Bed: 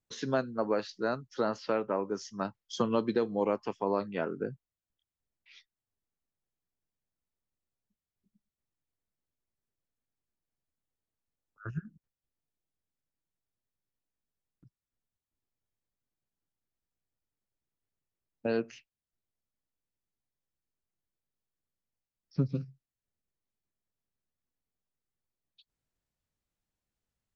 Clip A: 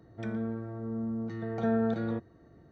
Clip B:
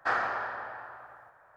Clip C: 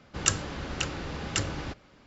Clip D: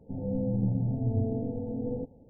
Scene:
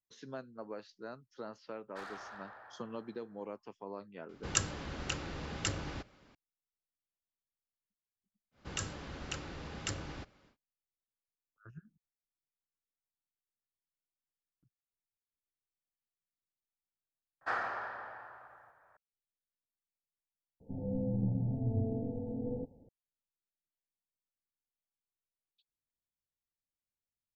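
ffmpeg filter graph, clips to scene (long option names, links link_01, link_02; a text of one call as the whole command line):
ffmpeg -i bed.wav -i cue0.wav -i cue1.wav -i cue2.wav -i cue3.wav -filter_complex "[2:a]asplit=2[link_01][link_02];[3:a]asplit=2[link_03][link_04];[0:a]volume=-14.5dB[link_05];[link_01]asoftclip=type=tanh:threshold=-32dB[link_06];[link_04]alimiter=limit=-12.5dB:level=0:latency=1:release=16[link_07];[link_05]asplit=3[link_08][link_09][link_10];[link_08]atrim=end=17.414[link_11];[link_02]atrim=end=1.56,asetpts=PTS-STARTPTS,volume=-6.5dB[link_12];[link_09]atrim=start=18.966:end=20.604[link_13];[4:a]atrim=end=2.29,asetpts=PTS-STARTPTS,volume=-5dB[link_14];[link_10]atrim=start=22.886[link_15];[link_06]atrim=end=1.56,asetpts=PTS-STARTPTS,volume=-12dB,afade=type=in:duration=0.004:curve=hsin,afade=type=out:start_time=1.556:duration=0.004:curve=hsin,adelay=1900[link_16];[link_03]atrim=end=2.06,asetpts=PTS-STARTPTS,volume=-6dB,afade=type=in:duration=0.004:curve=hsin,afade=type=out:start_time=2.056:duration=0.004:curve=hsin,adelay=189189S[link_17];[link_07]atrim=end=2.06,asetpts=PTS-STARTPTS,volume=-9dB,afade=type=in:duration=0.1,afade=type=out:start_time=1.96:duration=0.1,adelay=8510[link_18];[link_11][link_12]acrossfade=duration=0.004:curve1=hsin:curve2=hsin[link_19];[link_19][link_13]acrossfade=duration=0.004:curve1=hsin:curve2=hsin[link_20];[link_20][link_14]acrossfade=duration=0.004:curve1=hsin:curve2=hsin[link_21];[link_21][link_15]acrossfade=duration=0.004:curve1=hsin:curve2=hsin[link_22];[link_22][link_16][link_17][link_18]amix=inputs=4:normalize=0" out.wav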